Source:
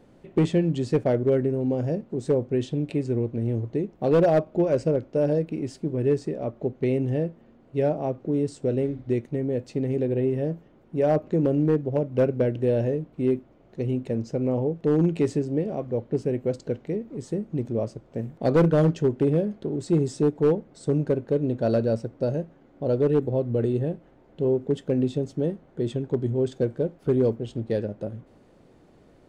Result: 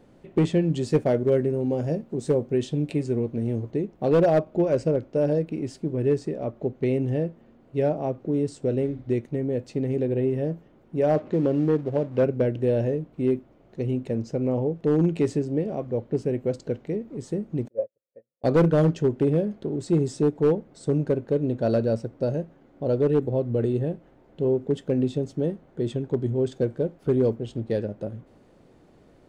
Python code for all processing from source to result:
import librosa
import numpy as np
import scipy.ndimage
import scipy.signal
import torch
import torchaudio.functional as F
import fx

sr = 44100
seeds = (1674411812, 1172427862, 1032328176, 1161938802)

y = fx.chain(x, sr, fx.high_shelf(hz=6300.0, db=7.0),
    fx.doubler(ms=13.0, db=-12), at=(0.69, 3.71))
y = fx.chain(y, sr, fx.law_mismatch(coded='mu'),
    fx.lowpass(hz=4900.0, slope=12),
    fx.low_shelf(hz=89.0, db=-9.5), at=(11.15, 12.23))
y = fx.chain(y, sr, fx.formant_cascade(vowel='e'),
    fx.peak_eq(hz=710.0, db=7.0, octaves=2.8),
    fx.upward_expand(threshold_db=-47.0, expansion=2.5), at=(17.68, 18.44))